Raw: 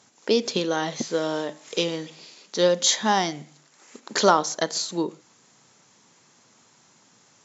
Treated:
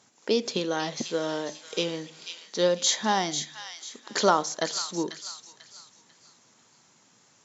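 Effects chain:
delay with a high-pass on its return 493 ms, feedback 32%, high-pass 1,900 Hz, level −7 dB
level −3.5 dB

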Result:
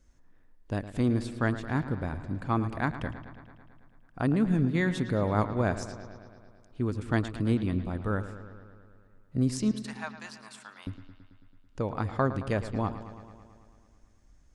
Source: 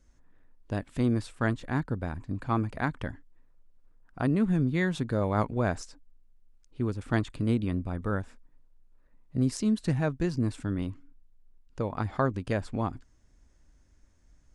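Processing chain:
0:09.71–0:10.87: Chebyshev high-pass filter 890 Hz, order 3
bucket-brigade delay 110 ms, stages 4,096, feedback 70%, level −13 dB

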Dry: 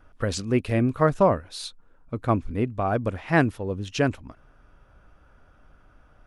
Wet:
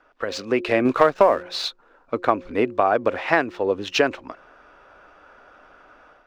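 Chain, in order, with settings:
running median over 5 samples
three-way crossover with the lows and the highs turned down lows −24 dB, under 320 Hz, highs −18 dB, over 6,400 Hz
notch filter 3,200 Hz, Q 28
hum removal 178.5 Hz, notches 3
downward compressor 12 to 1, threshold −26 dBFS, peak gain reduction 12.5 dB
0:00.85–0:01.43: leveller curve on the samples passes 1
automatic gain control gain up to 8.5 dB
level +4 dB

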